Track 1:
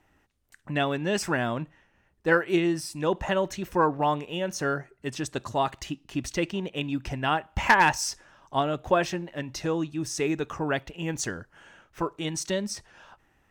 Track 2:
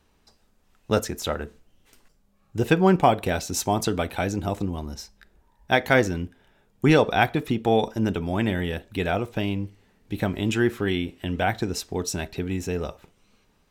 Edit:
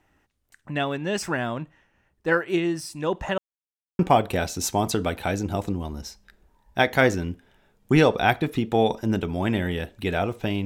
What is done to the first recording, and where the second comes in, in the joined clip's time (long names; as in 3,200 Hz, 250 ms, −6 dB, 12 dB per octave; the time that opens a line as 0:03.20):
track 1
0:03.38–0:03.99: silence
0:03.99: continue with track 2 from 0:02.92